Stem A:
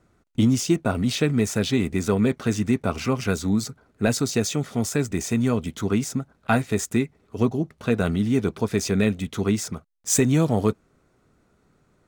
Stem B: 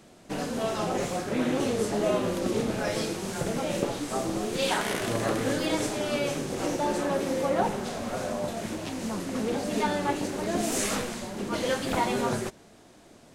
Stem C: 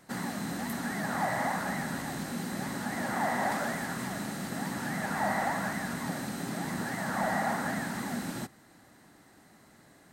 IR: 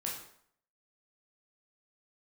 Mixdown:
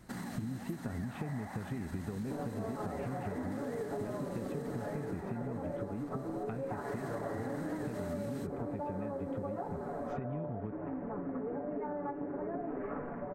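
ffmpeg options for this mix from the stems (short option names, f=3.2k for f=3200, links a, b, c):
-filter_complex "[0:a]lowshelf=f=350:g=12,acompressor=threshold=-18dB:ratio=6,volume=-6dB[a];[1:a]lowpass=f=1.6k:w=0.5412,lowpass=f=1.6k:w=1.3066,equalizer=f=420:w=0.39:g=6.5,aecho=1:1:7:0.65,adelay=2000,volume=-5.5dB[b];[2:a]lowshelf=f=220:g=9,alimiter=level_in=2dB:limit=-24dB:level=0:latency=1:release=83,volume=-2dB,volume=7.5dB,afade=t=out:st=4.91:d=0.53:silence=0.354813,afade=t=in:st=6.65:d=0.37:silence=0.266073[c];[a][b]amix=inputs=2:normalize=0,lowpass=f=2.4k:w=0.5412,lowpass=f=2.4k:w=1.3066,acompressor=threshold=-25dB:ratio=6,volume=0dB[d];[c][d]amix=inputs=2:normalize=0,acompressor=threshold=-38dB:ratio=3"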